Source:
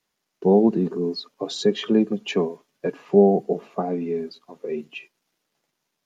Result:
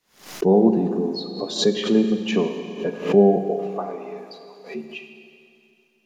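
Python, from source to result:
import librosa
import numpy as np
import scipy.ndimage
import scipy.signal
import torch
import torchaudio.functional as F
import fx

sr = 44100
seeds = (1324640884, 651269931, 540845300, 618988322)

y = fx.highpass(x, sr, hz=fx.line((3.5, 450.0), (4.74, 1300.0)), slope=12, at=(3.5, 4.74), fade=0.02)
y = fx.rev_schroeder(y, sr, rt60_s=2.6, comb_ms=32, drr_db=6.0)
y = fx.pre_swell(y, sr, db_per_s=130.0)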